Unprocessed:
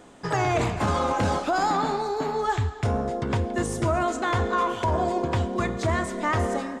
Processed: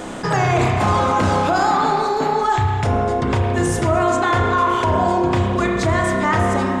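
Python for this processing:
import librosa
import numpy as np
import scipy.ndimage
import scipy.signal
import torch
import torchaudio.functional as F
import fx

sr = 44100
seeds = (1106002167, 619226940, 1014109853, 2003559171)

y = fx.hum_notches(x, sr, base_hz=60, count=7)
y = fx.rev_spring(y, sr, rt60_s=1.3, pass_ms=(31,), chirp_ms=55, drr_db=1.5)
y = fx.env_flatten(y, sr, amount_pct=50)
y = y * librosa.db_to_amplitude(3.5)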